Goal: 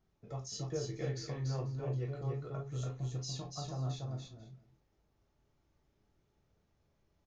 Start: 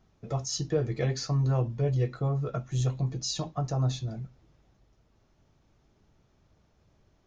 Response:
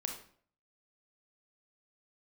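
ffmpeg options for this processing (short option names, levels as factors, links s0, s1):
-filter_complex "[0:a]aecho=1:1:288|490:0.631|0.106[s0];[1:a]atrim=start_sample=2205,atrim=end_sample=4410,asetrate=74970,aresample=44100[s1];[s0][s1]afir=irnorm=-1:irlink=0,volume=0.473"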